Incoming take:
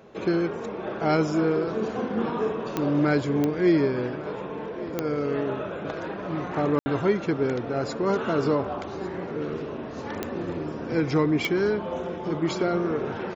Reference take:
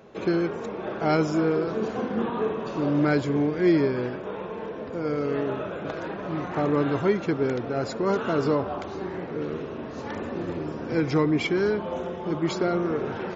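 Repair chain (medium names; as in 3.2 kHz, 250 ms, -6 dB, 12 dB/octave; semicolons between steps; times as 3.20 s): de-click; room tone fill 6.79–6.86 s; inverse comb 1149 ms -18 dB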